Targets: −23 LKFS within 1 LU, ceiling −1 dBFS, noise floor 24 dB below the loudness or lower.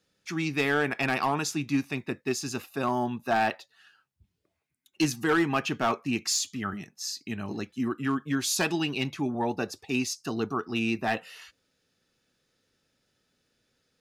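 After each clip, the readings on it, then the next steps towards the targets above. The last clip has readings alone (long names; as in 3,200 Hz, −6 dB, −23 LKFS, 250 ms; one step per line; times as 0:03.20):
share of clipped samples 0.4%; peaks flattened at −18.0 dBFS; integrated loudness −29.0 LKFS; sample peak −18.0 dBFS; target loudness −23.0 LKFS
→ clipped peaks rebuilt −18 dBFS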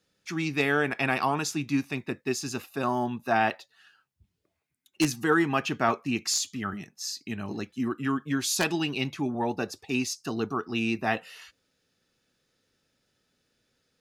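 share of clipped samples 0.0%; integrated loudness −28.5 LKFS; sample peak −9.0 dBFS; target loudness −23.0 LKFS
→ level +5.5 dB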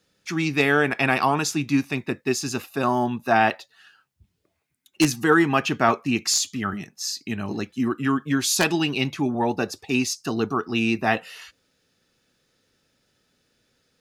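integrated loudness −23.0 LKFS; sample peak −3.5 dBFS; background noise floor −73 dBFS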